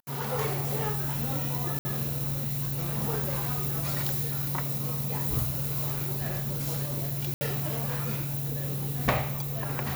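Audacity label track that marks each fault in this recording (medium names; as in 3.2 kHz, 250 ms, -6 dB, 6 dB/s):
1.790000	1.850000	dropout 60 ms
7.340000	7.410000	dropout 70 ms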